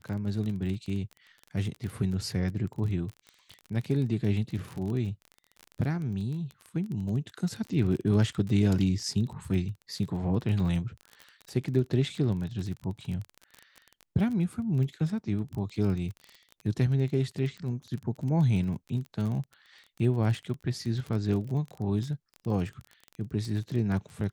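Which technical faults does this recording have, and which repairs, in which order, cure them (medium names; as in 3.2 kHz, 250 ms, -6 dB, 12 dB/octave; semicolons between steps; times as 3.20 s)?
crackle 28 per s -34 dBFS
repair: de-click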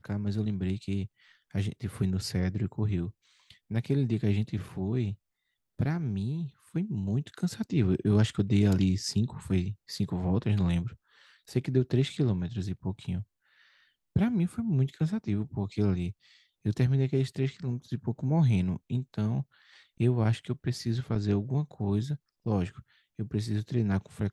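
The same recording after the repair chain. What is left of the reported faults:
nothing left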